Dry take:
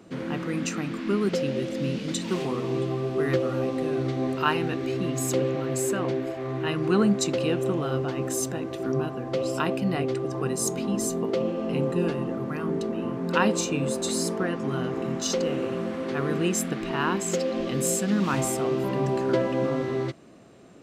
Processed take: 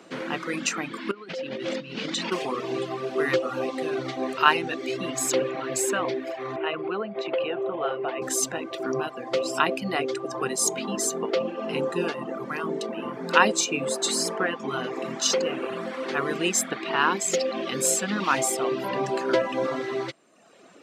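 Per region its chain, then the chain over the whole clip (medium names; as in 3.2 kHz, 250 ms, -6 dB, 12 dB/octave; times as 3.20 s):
1.11–2.32 s: low-pass 5.4 kHz + compressor with a negative ratio -31 dBFS
6.56–8.22 s: compression 10:1, threshold -24 dBFS + cabinet simulation 190–3000 Hz, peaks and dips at 270 Hz -8 dB, 420 Hz +4 dB, 650 Hz +6 dB, 1.7 kHz -4 dB
whole clip: frequency weighting A; reverb removal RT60 0.92 s; trim +6 dB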